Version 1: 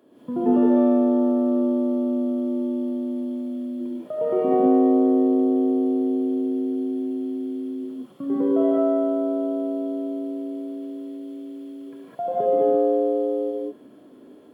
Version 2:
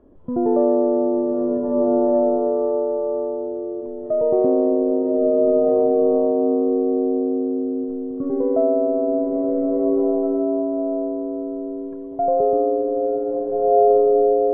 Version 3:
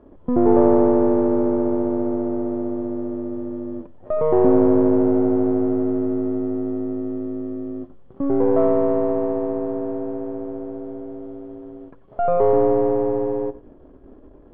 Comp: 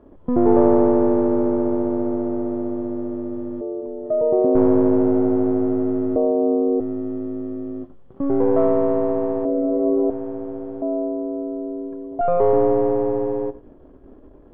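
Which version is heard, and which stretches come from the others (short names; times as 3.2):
3
3.61–4.55 from 2
6.16–6.8 from 2
9.45–10.1 from 2
10.82–12.21 from 2
not used: 1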